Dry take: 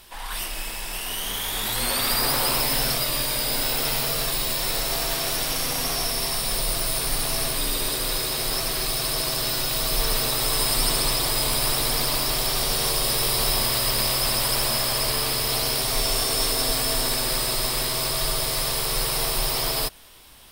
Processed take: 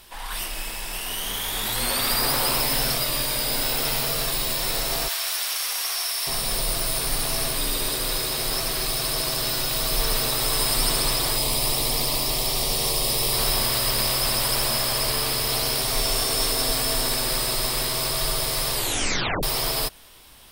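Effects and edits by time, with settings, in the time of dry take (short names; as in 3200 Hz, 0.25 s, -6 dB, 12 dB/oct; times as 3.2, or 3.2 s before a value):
5.08–6.27 HPF 1100 Hz
11.36–13.33 bell 1500 Hz -11.5 dB 0.44 oct
18.74 tape stop 0.69 s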